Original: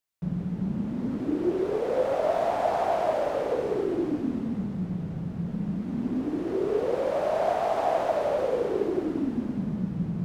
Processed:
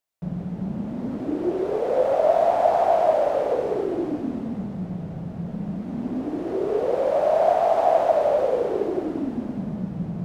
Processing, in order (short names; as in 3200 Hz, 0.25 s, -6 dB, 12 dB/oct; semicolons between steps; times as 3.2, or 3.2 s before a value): bell 660 Hz +7.5 dB 0.84 oct